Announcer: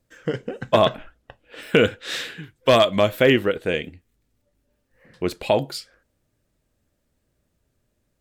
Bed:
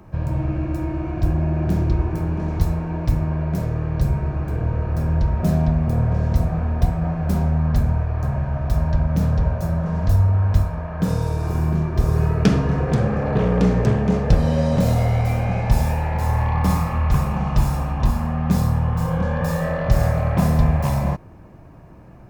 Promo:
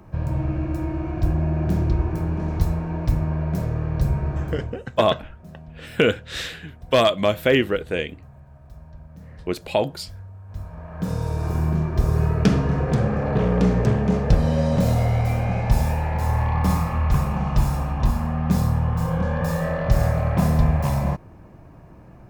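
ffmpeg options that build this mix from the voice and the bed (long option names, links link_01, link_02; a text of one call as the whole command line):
ffmpeg -i stem1.wav -i stem2.wav -filter_complex "[0:a]adelay=4250,volume=-1.5dB[link_01];[1:a]volume=20.5dB,afade=type=out:start_time=4.41:duration=0.39:silence=0.0794328,afade=type=in:start_time=10.47:duration=0.97:silence=0.0794328[link_02];[link_01][link_02]amix=inputs=2:normalize=0" out.wav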